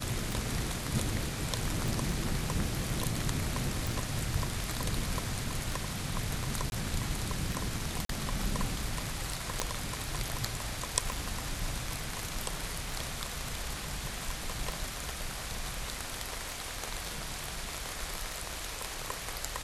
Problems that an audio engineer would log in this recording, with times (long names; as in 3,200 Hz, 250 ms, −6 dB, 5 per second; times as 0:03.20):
scratch tick 33 1/3 rpm
0:01.88: click
0:03.87: click
0:06.70–0:06.72: drop-out 21 ms
0:08.05–0:08.09: drop-out 43 ms
0:09.60: click −13 dBFS